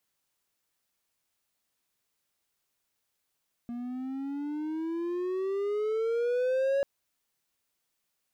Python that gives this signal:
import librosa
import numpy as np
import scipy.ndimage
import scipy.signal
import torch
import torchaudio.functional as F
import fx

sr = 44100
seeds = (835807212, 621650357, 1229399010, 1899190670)

y = fx.riser_tone(sr, length_s=3.14, level_db=-21.5, wave='triangle', hz=236.0, rise_st=15.0, swell_db=10.5)